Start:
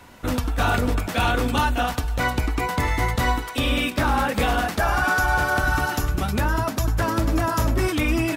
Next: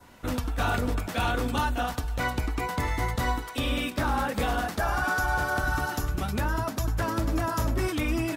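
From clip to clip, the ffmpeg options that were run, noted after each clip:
ffmpeg -i in.wav -af "adynamicequalizer=threshold=0.0112:dfrequency=2500:dqfactor=1.9:tfrequency=2500:tqfactor=1.9:attack=5:release=100:ratio=0.375:range=2:mode=cutabove:tftype=bell,volume=-5.5dB" out.wav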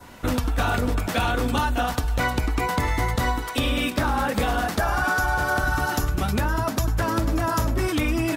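ffmpeg -i in.wav -af "acompressor=threshold=-27dB:ratio=6,volume=8dB" out.wav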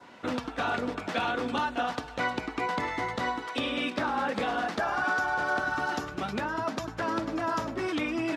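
ffmpeg -i in.wav -af "highpass=220,lowpass=4500,volume=-4.5dB" out.wav

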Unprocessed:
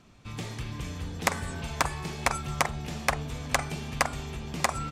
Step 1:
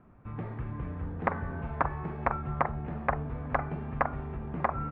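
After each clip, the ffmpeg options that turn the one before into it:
ffmpeg -i in.wav -af "lowpass=frequency=1600:width=0.5412,lowpass=frequency=1600:width=1.3066" out.wav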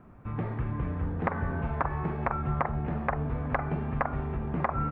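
ffmpeg -i in.wav -af "alimiter=limit=-18dB:level=0:latency=1:release=138,volume=5dB" out.wav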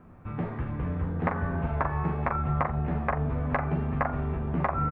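ffmpeg -i in.wav -af "aecho=1:1:12|41:0.473|0.335" out.wav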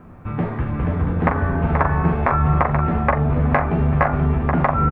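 ffmpeg -i in.wav -af "aecho=1:1:481:0.562,volume=9dB" out.wav

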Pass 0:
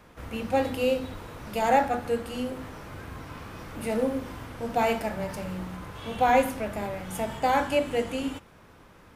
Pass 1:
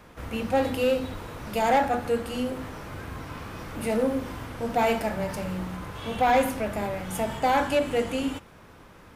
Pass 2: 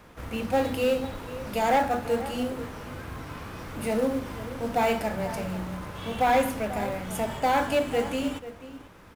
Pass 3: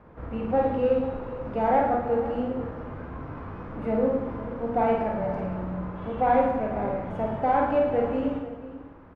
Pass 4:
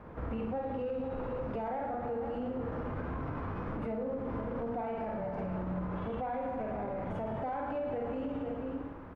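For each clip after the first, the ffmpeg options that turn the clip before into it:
ffmpeg -i in.wav -af "asoftclip=type=tanh:threshold=-18dB,volume=3dB" out.wav
ffmpeg -i in.wav -filter_complex "[0:a]asplit=2[link_01][link_02];[link_02]adelay=489.8,volume=-14dB,highshelf=frequency=4000:gain=-11[link_03];[link_01][link_03]amix=inputs=2:normalize=0,asplit=2[link_04][link_05];[link_05]acrusher=bits=3:mode=log:mix=0:aa=0.000001,volume=-6dB[link_06];[link_04][link_06]amix=inputs=2:normalize=0,volume=-4.5dB" out.wav
ffmpeg -i in.wav -filter_complex "[0:a]lowpass=1200,asplit=2[link_01][link_02];[link_02]aecho=0:1:50|110|182|268.4|372.1:0.631|0.398|0.251|0.158|0.1[link_03];[link_01][link_03]amix=inputs=2:normalize=0" out.wav
ffmpeg -i in.wav -af "acompressor=threshold=-31dB:ratio=6,alimiter=level_in=7.5dB:limit=-24dB:level=0:latency=1:release=37,volume=-7.5dB,volume=2.5dB" out.wav

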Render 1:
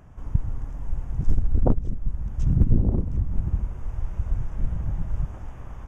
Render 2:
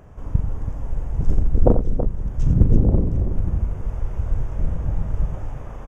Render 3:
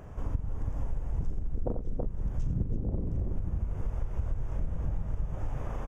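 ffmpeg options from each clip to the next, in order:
ffmpeg -i in.wav -af "equalizer=frequency=490:width_type=o:width=0.95:gain=7,aecho=1:1:40|89|328:0.355|0.316|0.355,volume=2.5dB" out.wav
ffmpeg -i in.wav -af "acompressor=threshold=-26dB:ratio=10" out.wav

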